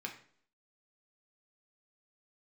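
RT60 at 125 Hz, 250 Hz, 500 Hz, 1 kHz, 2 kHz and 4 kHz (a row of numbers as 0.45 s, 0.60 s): 0.55 s, 0.60 s, 0.60 s, 0.50 s, 0.50 s, 0.50 s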